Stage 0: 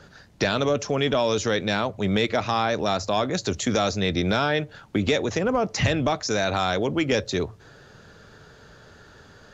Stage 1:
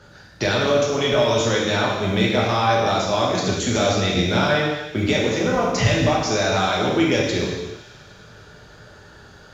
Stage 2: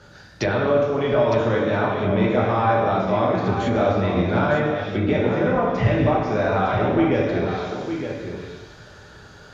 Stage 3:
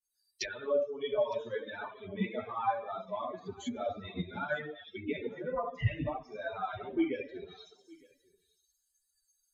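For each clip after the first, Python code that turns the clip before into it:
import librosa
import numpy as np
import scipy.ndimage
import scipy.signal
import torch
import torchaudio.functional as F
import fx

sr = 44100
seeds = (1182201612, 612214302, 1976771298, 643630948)

y1 = fx.quant_float(x, sr, bits=6)
y1 = fx.echo_wet_highpass(y1, sr, ms=100, feedback_pct=79, hz=2800.0, wet_db=-15.5)
y1 = fx.rev_gated(y1, sr, seeds[0], gate_ms=400, shape='falling', drr_db=-4.5)
y1 = y1 * librosa.db_to_amplitude(-1.5)
y2 = fx.env_lowpass_down(y1, sr, base_hz=1600.0, full_db=-18.0)
y2 = y2 + 10.0 ** (-8.5 / 20.0) * np.pad(y2, (int(910 * sr / 1000.0), 0))[:len(y2)]
y3 = fx.bin_expand(y2, sr, power=3.0)
y3 = fx.high_shelf(y3, sr, hz=3200.0, db=9.5)
y3 = y3 * librosa.db_to_amplitude(-7.0)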